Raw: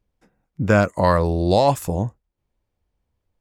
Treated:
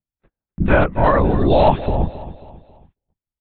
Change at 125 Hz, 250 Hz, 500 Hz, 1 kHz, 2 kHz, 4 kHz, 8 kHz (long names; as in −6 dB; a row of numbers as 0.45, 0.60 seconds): +1.5 dB, +2.5 dB, +2.5 dB, +3.0 dB, +3.0 dB, −1.0 dB, below −35 dB